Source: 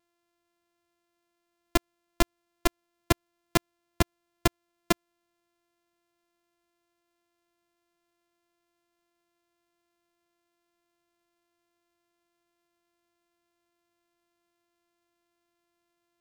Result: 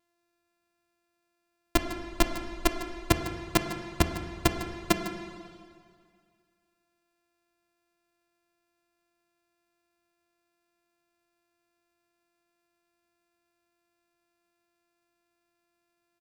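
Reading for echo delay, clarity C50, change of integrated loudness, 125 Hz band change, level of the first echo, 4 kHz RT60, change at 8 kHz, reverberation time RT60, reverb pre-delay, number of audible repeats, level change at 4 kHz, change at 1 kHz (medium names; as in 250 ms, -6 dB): 153 ms, 6.5 dB, +0.5 dB, +1.0 dB, -13.5 dB, 2.0 s, +0.5 dB, 2.1 s, 6 ms, 1, +1.0 dB, +1.0 dB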